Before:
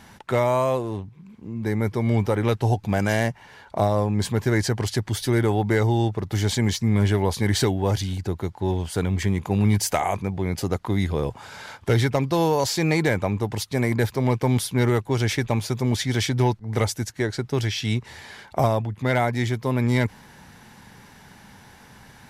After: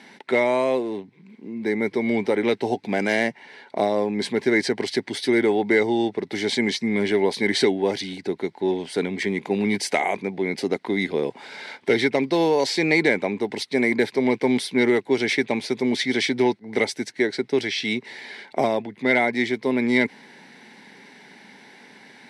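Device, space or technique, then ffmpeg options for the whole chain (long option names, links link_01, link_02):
television speaker: -af "highpass=frequency=200:width=0.5412,highpass=frequency=200:width=1.3066,equalizer=frequency=260:width_type=q:width=4:gain=4,equalizer=frequency=400:width_type=q:width=4:gain=6,equalizer=frequency=1200:width_type=q:width=4:gain=-9,equalizer=frequency=2100:width_type=q:width=4:gain=10,equalizer=frequency=4000:width_type=q:width=4:gain=5,equalizer=frequency=6900:width_type=q:width=4:gain=-9,lowpass=frequency=9000:width=0.5412,lowpass=frequency=9000:width=1.3066"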